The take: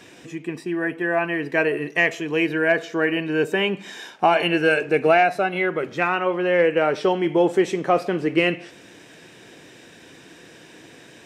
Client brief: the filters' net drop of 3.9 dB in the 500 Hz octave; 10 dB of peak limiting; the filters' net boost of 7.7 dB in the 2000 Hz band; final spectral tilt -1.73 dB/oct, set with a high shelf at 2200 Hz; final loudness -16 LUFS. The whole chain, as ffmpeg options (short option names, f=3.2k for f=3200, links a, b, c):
-af "equalizer=f=500:t=o:g=-6,equalizer=f=2k:t=o:g=7,highshelf=f=2.2k:g=5.5,volume=5dB,alimiter=limit=-4.5dB:level=0:latency=1"